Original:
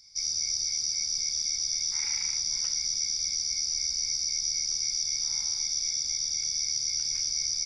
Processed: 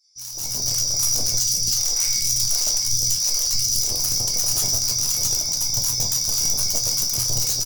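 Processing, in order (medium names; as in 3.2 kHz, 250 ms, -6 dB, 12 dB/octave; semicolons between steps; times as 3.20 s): doubling 21 ms -11.5 dB; simulated room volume 70 m³, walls mixed, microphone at 1.5 m; saturation -15 dBFS, distortion -20 dB; reverb removal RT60 0.68 s; hum 60 Hz, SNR 24 dB; integer overflow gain 19 dB; ten-band graphic EQ 125 Hz +11 dB, 250 Hz -4 dB, 2 kHz -10 dB, 4 kHz -4 dB, 8 kHz +6 dB; bands offset in time highs, lows 160 ms, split 950 Hz; 1.40–3.84 s: phase shifter stages 2, 1.4 Hz, lowest notch 130–1200 Hz; chord resonator E2 minor, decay 0.29 s; level rider gain up to 15.5 dB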